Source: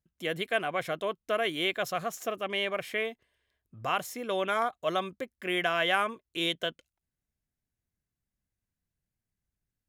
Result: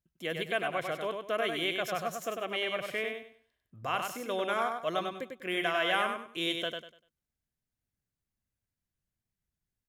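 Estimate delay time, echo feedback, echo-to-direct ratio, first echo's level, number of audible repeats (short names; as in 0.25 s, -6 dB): 98 ms, 27%, -4.5 dB, -5.0 dB, 3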